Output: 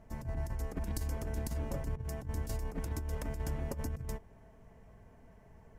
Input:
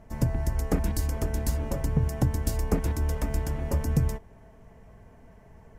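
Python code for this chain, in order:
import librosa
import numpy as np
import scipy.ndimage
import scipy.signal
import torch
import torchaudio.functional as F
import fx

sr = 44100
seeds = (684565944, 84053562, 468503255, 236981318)

y = fx.over_compress(x, sr, threshold_db=-27.0, ratio=-0.5)
y = F.gain(torch.from_numpy(y), -8.0).numpy()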